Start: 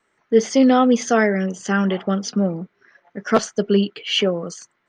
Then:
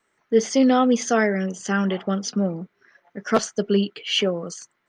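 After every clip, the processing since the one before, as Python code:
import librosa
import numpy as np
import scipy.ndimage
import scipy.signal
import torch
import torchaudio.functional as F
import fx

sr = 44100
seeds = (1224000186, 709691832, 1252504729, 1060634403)

y = fx.high_shelf(x, sr, hz=6200.0, db=6.0)
y = F.gain(torch.from_numpy(y), -3.0).numpy()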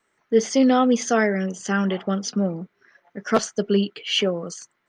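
y = x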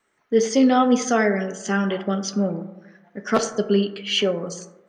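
y = fx.rev_plate(x, sr, seeds[0], rt60_s=1.0, hf_ratio=0.3, predelay_ms=0, drr_db=8.0)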